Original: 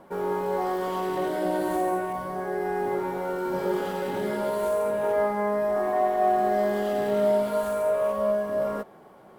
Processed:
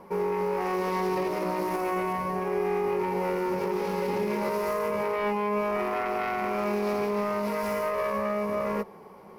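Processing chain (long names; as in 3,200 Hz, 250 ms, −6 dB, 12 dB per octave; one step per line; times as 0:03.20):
phase distortion by the signal itself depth 0.35 ms
EQ curve with evenly spaced ripples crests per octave 0.84, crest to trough 9 dB
brickwall limiter −21.5 dBFS, peak gain reduction 8 dB
level +1.5 dB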